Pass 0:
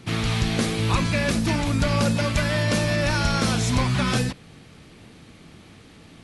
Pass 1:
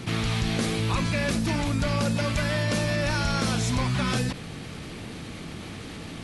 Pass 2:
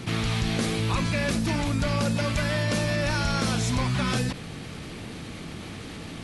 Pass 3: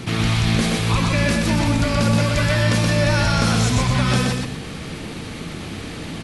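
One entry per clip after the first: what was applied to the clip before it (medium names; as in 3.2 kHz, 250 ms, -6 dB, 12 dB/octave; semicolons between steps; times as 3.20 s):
level flattener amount 50%; trim -5.5 dB
no audible change
loudspeakers at several distances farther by 43 m -3 dB, 83 m -11 dB; trim +5 dB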